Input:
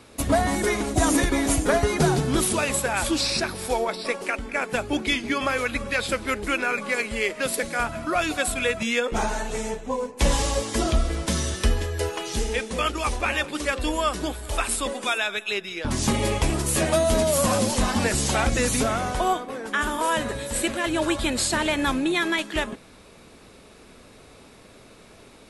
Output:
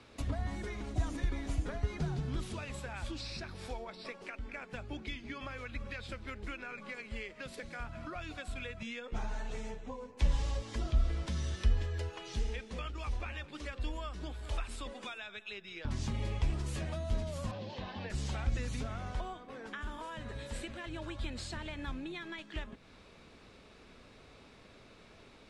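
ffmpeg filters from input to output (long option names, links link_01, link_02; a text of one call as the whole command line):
ffmpeg -i in.wav -filter_complex "[0:a]asettb=1/sr,asplit=3[link_01][link_02][link_03];[link_01]atrim=end=17.514[link_04];[link_02]atrim=start=17.51:end=18.1,asetpts=PTS-STARTPTS,afade=type=in:duration=0.004:curve=qsin,afade=type=out:start_time=0.586:duration=0.004:curve=qsin,highpass=140,equalizer=frequency=240:width_type=q:width=4:gain=-10,equalizer=frequency=1300:width_type=q:width=4:gain=-10,equalizer=frequency=2200:width_type=q:width=4:gain=-4,lowpass=frequency=4100:width=0.5412,lowpass=frequency=4100:width=1.3066[link_05];[link_03]atrim=start=18.096[link_06];[link_04][link_05]acrossfade=duration=0.004:curve1=hsin:curve2=qsin[link_07];[link_07][link_06]acrossfade=duration=0.004:curve1=qsin:curve2=hsin,lowpass=4800,equalizer=frequency=420:width=0.37:gain=-3.5,acrossover=split=150[link_08][link_09];[link_09]acompressor=threshold=-38dB:ratio=4[link_10];[link_08][link_10]amix=inputs=2:normalize=0,volume=-5.5dB" out.wav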